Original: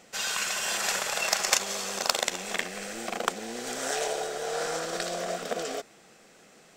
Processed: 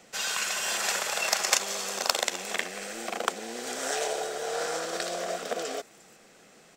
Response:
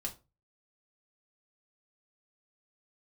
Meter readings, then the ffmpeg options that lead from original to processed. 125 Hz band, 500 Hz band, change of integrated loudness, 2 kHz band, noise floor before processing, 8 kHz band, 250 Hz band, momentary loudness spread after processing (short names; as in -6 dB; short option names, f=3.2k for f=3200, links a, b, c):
-5.0 dB, 0.0 dB, 0.0 dB, 0.0 dB, -56 dBFS, 0.0 dB, -2.0 dB, 9 LU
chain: -filter_complex "[0:a]acrossover=split=210|1000|6400[a][b][c][d];[a]acompressor=threshold=-60dB:ratio=6[e];[d]aecho=1:1:354:0.224[f];[e][b][c][f]amix=inputs=4:normalize=0"